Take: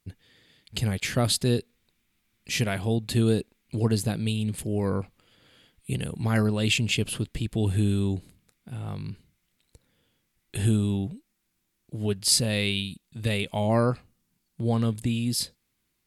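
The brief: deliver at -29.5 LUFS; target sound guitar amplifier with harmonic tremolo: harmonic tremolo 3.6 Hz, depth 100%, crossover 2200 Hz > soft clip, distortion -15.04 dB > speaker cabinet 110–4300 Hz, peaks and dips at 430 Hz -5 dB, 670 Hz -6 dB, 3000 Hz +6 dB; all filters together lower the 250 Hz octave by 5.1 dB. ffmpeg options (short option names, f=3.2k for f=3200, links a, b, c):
-filter_complex "[0:a]equalizer=f=250:t=o:g=-5.5,acrossover=split=2200[a][b];[a]aeval=exprs='val(0)*(1-1/2+1/2*cos(2*PI*3.6*n/s))':c=same[c];[b]aeval=exprs='val(0)*(1-1/2-1/2*cos(2*PI*3.6*n/s))':c=same[d];[c][d]amix=inputs=2:normalize=0,asoftclip=threshold=-21dB,highpass=110,equalizer=f=430:t=q:w=4:g=-5,equalizer=f=670:t=q:w=4:g=-6,equalizer=f=3k:t=q:w=4:g=6,lowpass=f=4.3k:w=0.5412,lowpass=f=4.3k:w=1.3066,volume=7dB"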